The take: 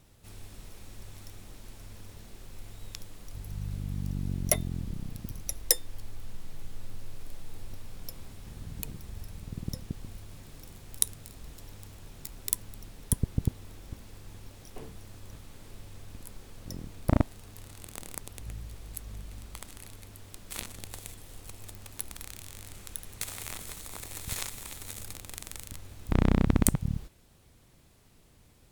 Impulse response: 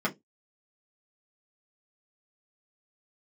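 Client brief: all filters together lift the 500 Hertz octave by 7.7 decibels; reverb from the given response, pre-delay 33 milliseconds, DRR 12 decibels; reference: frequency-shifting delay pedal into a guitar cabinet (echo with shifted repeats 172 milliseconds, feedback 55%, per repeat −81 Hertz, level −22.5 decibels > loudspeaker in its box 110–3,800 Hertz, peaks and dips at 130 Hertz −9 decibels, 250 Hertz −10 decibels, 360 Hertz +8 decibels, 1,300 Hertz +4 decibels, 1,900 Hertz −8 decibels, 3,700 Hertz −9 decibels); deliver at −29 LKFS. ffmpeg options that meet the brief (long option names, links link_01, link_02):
-filter_complex "[0:a]equalizer=frequency=500:width_type=o:gain=7.5,asplit=2[link_01][link_02];[1:a]atrim=start_sample=2205,adelay=33[link_03];[link_02][link_03]afir=irnorm=-1:irlink=0,volume=-21.5dB[link_04];[link_01][link_04]amix=inputs=2:normalize=0,asplit=5[link_05][link_06][link_07][link_08][link_09];[link_06]adelay=172,afreqshift=-81,volume=-22.5dB[link_10];[link_07]adelay=344,afreqshift=-162,volume=-27.7dB[link_11];[link_08]adelay=516,afreqshift=-243,volume=-32.9dB[link_12];[link_09]adelay=688,afreqshift=-324,volume=-38.1dB[link_13];[link_05][link_10][link_11][link_12][link_13]amix=inputs=5:normalize=0,highpass=110,equalizer=frequency=130:width_type=q:width=4:gain=-9,equalizer=frequency=250:width_type=q:width=4:gain=-10,equalizer=frequency=360:width_type=q:width=4:gain=8,equalizer=frequency=1300:width_type=q:width=4:gain=4,equalizer=frequency=1900:width_type=q:width=4:gain=-8,equalizer=frequency=3700:width_type=q:width=4:gain=-9,lowpass=frequency=3800:width=0.5412,lowpass=frequency=3800:width=1.3066,volume=7.5dB"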